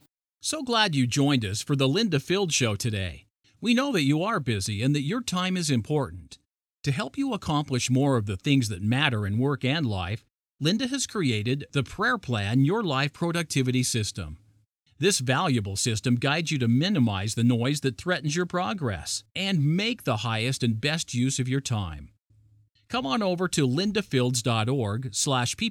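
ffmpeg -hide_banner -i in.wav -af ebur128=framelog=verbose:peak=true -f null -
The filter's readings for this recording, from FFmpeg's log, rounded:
Integrated loudness:
  I:         -25.7 LUFS
  Threshold: -36.1 LUFS
Loudness range:
  LRA:         2.9 LU
  Threshold: -46.2 LUFS
  LRA low:   -27.8 LUFS
  LRA high:  -24.9 LUFS
True peak:
  Peak:       -4.8 dBFS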